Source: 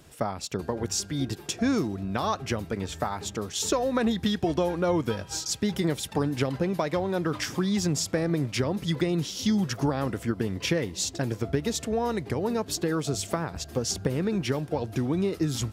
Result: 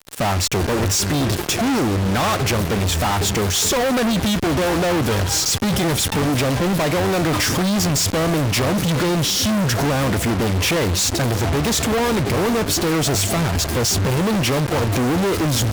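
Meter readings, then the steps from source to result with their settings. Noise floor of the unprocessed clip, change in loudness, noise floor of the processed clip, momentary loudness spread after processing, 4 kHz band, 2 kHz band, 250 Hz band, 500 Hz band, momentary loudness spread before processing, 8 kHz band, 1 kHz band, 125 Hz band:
−45 dBFS, +9.5 dB, −24 dBFS, 2 LU, +12.0 dB, +12.5 dB, +7.5 dB, +7.5 dB, 5 LU, +12.0 dB, +10.5 dB, +10.5 dB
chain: parametric band 91 Hz +8.5 dB 0.22 octaves
fuzz pedal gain 52 dB, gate −44 dBFS
level −4 dB

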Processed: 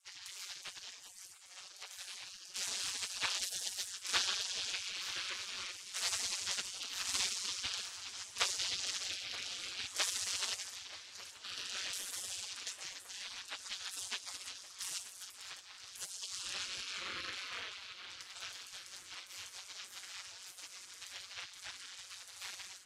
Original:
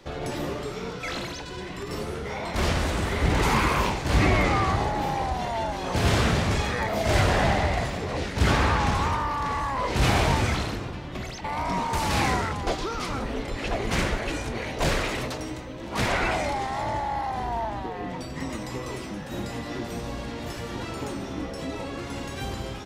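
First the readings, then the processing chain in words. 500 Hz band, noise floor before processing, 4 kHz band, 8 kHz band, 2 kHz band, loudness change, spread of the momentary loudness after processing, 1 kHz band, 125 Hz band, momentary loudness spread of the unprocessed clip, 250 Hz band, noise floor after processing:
−29.5 dB, −36 dBFS, −4.0 dB, −0.5 dB, −14.5 dB, −12.5 dB, 14 LU, −24.5 dB, −40.0 dB, 12 LU, −35.5 dB, −55 dBFS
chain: gate on every frequency bin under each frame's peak −30 dB weak
ring modulation 93 Hz
high-frequency loss of the air 57 metres
on a send: feedback echo with a low-pass in the loop 928 ms, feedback 82%, low-pass 3,300 Hz, level −15.5 dB
on the sum: level +10.5 dB

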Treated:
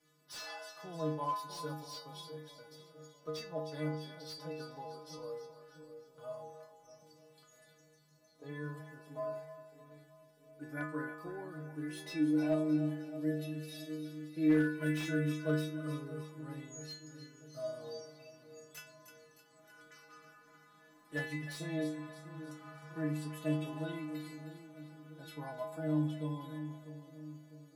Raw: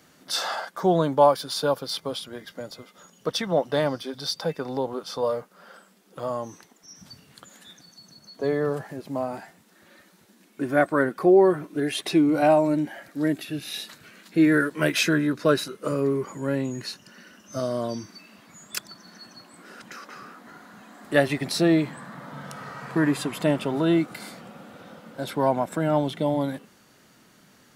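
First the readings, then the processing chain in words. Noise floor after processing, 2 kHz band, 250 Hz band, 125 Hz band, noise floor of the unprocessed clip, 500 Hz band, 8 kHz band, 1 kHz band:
−65 dBFS, −14.0 dB, −11.5 dB, −8.5 dB, −57 dBFS, −17.5 dB, −16.0 dB, −17.5 dB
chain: stiff-string resonator 150 Hz, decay 0.79 s, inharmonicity 0.008
echo with a time of its own for lows and highs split 540 Hz, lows 650 ms, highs 309 ms, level −11 dB
slew-rate limiting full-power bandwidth 32 Hz

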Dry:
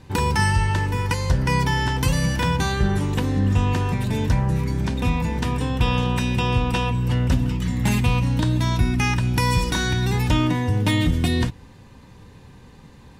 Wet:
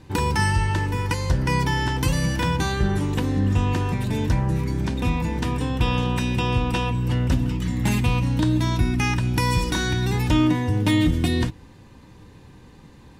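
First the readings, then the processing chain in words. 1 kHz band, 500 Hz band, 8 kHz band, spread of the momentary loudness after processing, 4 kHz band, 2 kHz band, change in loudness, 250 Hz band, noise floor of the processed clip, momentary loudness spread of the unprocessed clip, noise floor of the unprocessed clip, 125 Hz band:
−1.5 dB, −0.5 dB, −1.5 dB, 4 LU, −1.5 dB, −1.5 dB, −1.0 dB, +0.5 dB, −47 dBFS, 3 LU, −46 dBFS, −1.5 dB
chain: parametric band 320 Hz +7 dB 0.25 octaves
level −1.5 dB

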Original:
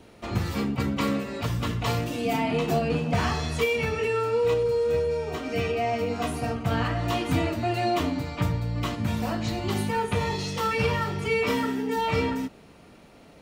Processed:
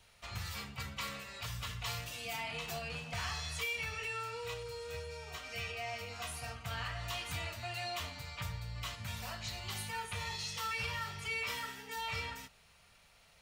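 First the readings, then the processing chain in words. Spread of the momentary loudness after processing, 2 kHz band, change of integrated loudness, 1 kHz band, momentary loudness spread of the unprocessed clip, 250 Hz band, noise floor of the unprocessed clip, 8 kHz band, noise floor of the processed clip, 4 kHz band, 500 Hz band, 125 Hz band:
7 LU, −7.5 dB, −13.0 dB, −13.5 dB, 5 LU, −26.0 dB, −51 dBFS, −4.0 dB, −64 dBFS, −5.5 dB, −21.0 dB, −15.5 dB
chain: guitar amp tone stack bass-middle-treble 10-0-10
in parallel at −2 dB: brickwall limiter −29.5 dBFS, peak gain reduction 9 dB
on the sum: level −7.5 dB

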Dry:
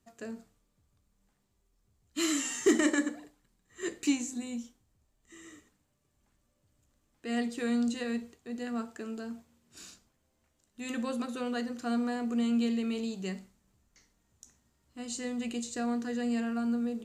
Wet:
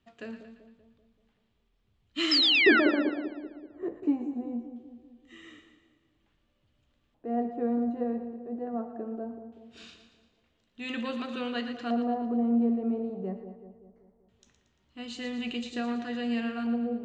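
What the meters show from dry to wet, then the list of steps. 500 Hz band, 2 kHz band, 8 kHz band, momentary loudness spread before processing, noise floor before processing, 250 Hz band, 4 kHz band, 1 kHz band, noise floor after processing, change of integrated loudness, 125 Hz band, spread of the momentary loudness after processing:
+3.5 dB, +8.5 dB, below −15 dB, 16 LU, −75 dBFS, +1.5 dB, +12.0 dB, +5.5 dB, −73 dBFS, +4.0 dB, can't be measured, 21 LU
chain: auto-filter low-pass square 0.21 Hz 710–3,200 Hz
sound drawn into the spectrogram fall, 0:02.31–0:02.80, 1,300–5,400 Hz −23 dBFS
echo with a time of its own for lows and highs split 800 Hz, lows 192 ms, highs 115 ms, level −9.5 dB

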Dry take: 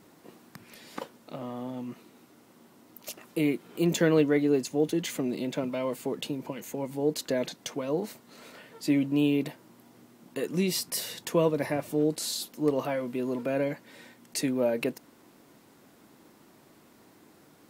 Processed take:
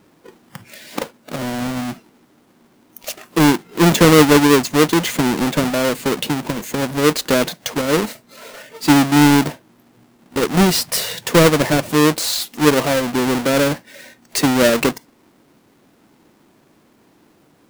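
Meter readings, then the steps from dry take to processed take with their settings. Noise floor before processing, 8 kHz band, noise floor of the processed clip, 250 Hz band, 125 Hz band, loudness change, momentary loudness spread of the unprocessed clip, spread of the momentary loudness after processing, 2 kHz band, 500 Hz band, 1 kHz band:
−58 dBFS, +14.5 dB, −55 dBFS, +12.5 dB, +14.5 dB, +13.0 dB, 17 LU, 16 LU, +17.5 dB, +11.0 dB, +19.5 dB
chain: each half-wave held at its own peak
noise reduction from a noise print of the clip's start 11 dB
level +9 dB

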